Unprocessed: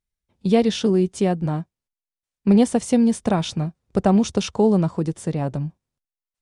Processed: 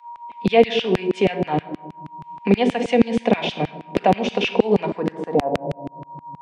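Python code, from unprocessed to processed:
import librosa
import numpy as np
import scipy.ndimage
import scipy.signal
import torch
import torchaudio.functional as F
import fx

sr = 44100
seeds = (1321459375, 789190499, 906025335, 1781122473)

y = fx.recorder_agc(x, sr, target_db=-13.5, rise_db_per_s=6.7, max_gain_db=30)
y = fx.low_shelf(y, sr, hz=410.0, db=7.5)
y = fx.filter_sweep_lowpass(y, sr, from_hz=2500.0, to_hz=120.0, start_s=4.83, end_s=6.36, q=2.4)
y = fx.peak_eq(y, sr, hz=1300.0, db=-13.5, octaves=0.57)
y = y + 10.0 ** (-51.0 / 20.0) * np.sin(2.0 * np.pi * 950.0 * np.arange(len(y)) / sr)
y = fx.room_shoebox(y, sr, seeds[0], volume_m3=3300.0, walls='furnished', distance_m=1.8)
y = fx.filter_lfo_highpass(y, sr, shape='saw_down', hz=6.3, low_hz=310.0, high_hz=2700.0, q=1.1)
y = fx.band_squash(y, sr, depth_pct=40)
y = y * 10.0 ** (3.5 / 20.0)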